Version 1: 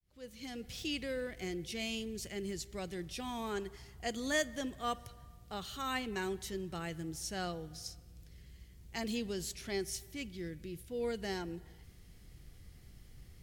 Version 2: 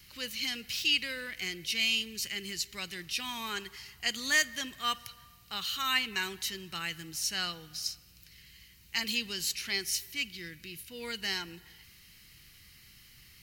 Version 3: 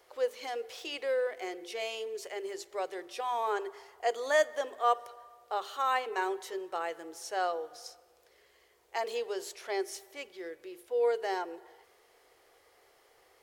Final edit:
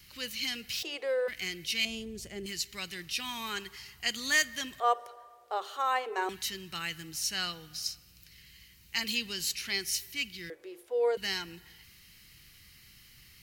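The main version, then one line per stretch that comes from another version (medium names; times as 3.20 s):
2
0.83–1.28 s: from 3
1.85–2.46 s: from 1
4.80–6.29 s: from 3
10.50–11.17 s: from 3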